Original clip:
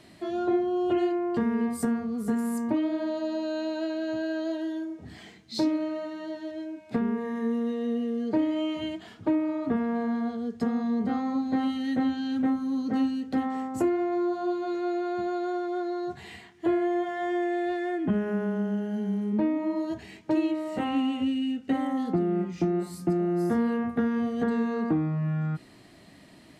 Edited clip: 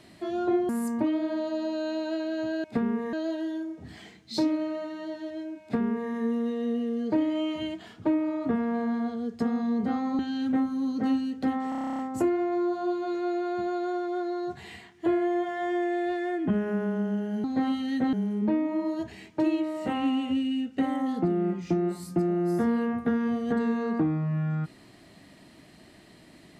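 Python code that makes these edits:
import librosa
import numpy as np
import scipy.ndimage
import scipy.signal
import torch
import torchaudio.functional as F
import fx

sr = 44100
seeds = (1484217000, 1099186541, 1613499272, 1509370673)

y = fx.edit(x, sr, fx.cut(start_s=0.69, length_s=1.7),
    fx.duplicate(start_s=6.83, length_s=0.49, to_s=4.34),
    fx.move(start_s=11.4, length_s=0.69, to_s=19.04),
    fx.stutter(start_s=13.59, slice_s=0.03, count=11), tone=tone)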